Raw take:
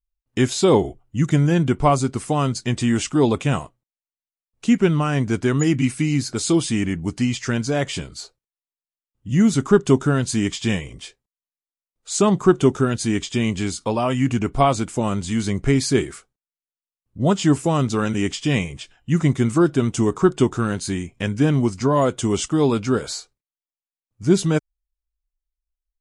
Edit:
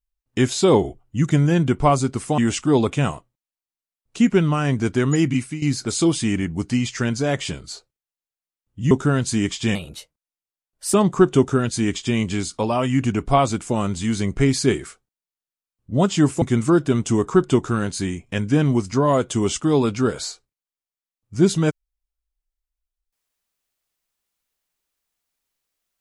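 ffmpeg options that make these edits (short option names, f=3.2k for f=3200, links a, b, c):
-filter_complex "[0:a]asplit=7[a][b][c][d][e][f][g];[a]atrim=end=2.382[h];[b]atrim=start=2.858:end=6.1,asetpts=PTS-STARTPTS,afade=t=out:st=2.902:d=0.34:silence=0.223872[i];[c]atrim=start=6.1:end=9.392,asetpts=PTS-STARTPTS,afade=t=in:d=0.004:c=hsin:silence=0.223872[j];[d]atrim=start=9.918:end=10.764[k];[e]atrim=start=10.76:end=12.21,asetpts=PTS-STARTPTS,asetrate=53802,aresample=44100[l];[f]atrim=start=12.206:end=17.692[m];[g]atrim=start=19.298[n];[i][j]concat=n=2:v=0:a=1[o];[h][o]acrossfade=d=0.004:c1=hsin:c2=hsin[p];[p][k]acrossfade=d=0.004:c1=hsin:c2=hsin[q];[q][l]acrossfade=d=0.004:c1=hsin:c2=hsin[r];[r][m]acrossfade=d=0.004:c1=hsin:c2=hsin[s];[s][n]acrossfade=d=0.004:c1=hsin:c2=hsin"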